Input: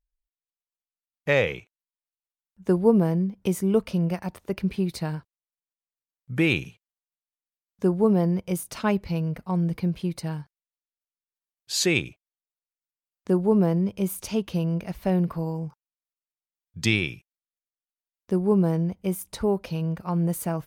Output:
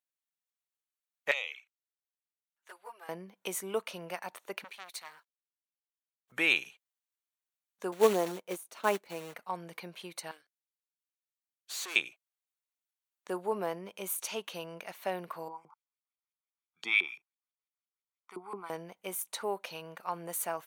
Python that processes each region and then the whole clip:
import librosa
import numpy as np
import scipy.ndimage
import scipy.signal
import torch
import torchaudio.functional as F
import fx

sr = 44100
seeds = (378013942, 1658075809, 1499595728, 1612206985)

y = fx.chain(x, sr, fx.highpass(hz=1500.0, slope=12),
    fx.high_shelf(hz=2100.0, db=-6.0),
    fx.env_flanger(rest_ms=8.4, full_db=-29.0), at=(1.31, 3.09))
y = fx.chain(y, sr, fx.law_mismatch(coded='A'),
    fx.highpass(hz=850.0, slope=6),
    fx.transformer_sat(knee_hz=2500.0), at=(4.64, 6.32))
y = fx.chain(y, sr, fx.quant_float(bits=2),
    fx.peak_eq(hz=330.0, db=11.0, octaves=2.2),
    fx.upward_expand(threshold_db=-32.0, expansion=1.5), at=(7.92, 9.34))
y = fx.chain(y, sr, fx.fixed_phaser(hz=380.0, stages=4),
    fx.tube_stage(drive_db=35.0, bias=0.75), at=(10.31, 11.96))
y = fx.chain(y, sr, fx.peak_eq(hz=11000.0, db=8.0, octaves=0.93),
    fx.comb(ms=0.9, depth=0.99),
    fx.filter_lfo_bandpass(shape='saw_up', hz=5.9, low_hz=350.0, high_hz=3100.0, q=1.5), at=(15.48, 18.7))
y = scipy.signal.sosfilt(scipy.signal.butter(2, 780.0, 'highpass', fs=sr, output='sos'), y)
y = fx.notch(y, sr, hz=5000.0, q=6.2)